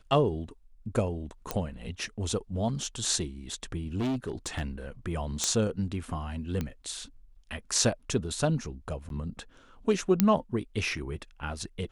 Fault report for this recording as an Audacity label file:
1.510000	1.510000	pop -13 dBFS
3.960000	4.620000	clipped -26.5 dBFS
5.440000	5.440000	pop -12 dBFS
6.610000	6.610000	pop -18 dBFS
9.090000	9.100000	dropout 12 ms
10.200000	10.200000	pop -7 dBFS

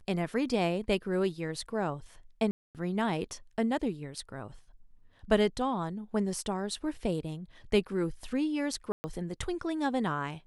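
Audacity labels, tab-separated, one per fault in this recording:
2.510000	2.750000	dropout 238 ms
8.920000	9.040000	dropout 120 ms

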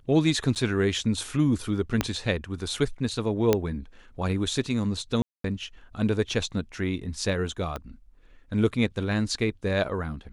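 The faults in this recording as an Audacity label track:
0.550000	0.560000	dropout 8.3 ms
2.010000	2.010000	pop -8 dBFS
3.530000	3.530000	pop -7 dBFS
5.220000	5.440000	dropout 223 ms
7.760000	7.760000	pop -18 dBFS

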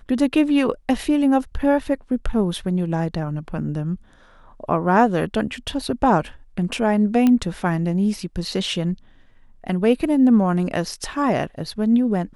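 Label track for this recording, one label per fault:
7.270000	7.270000	pop -8 dBFS

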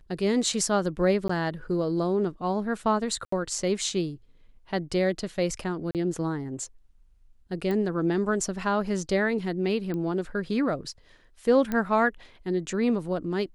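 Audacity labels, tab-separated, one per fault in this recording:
1.280000	1.290000	dropout
3.250000	3.320000	dropout 74 ms
5.910000	5.950000	dropout 38 ms
7.710000	7.710000	pop -19 dBFS
9.940000	9.940000	pop -22 dBFS
11.720000	11.720000	pop -16 dBFS

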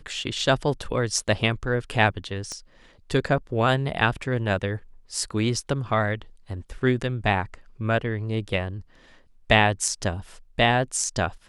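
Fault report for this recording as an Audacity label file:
2.520000	2.520000	pop -21 dBFS

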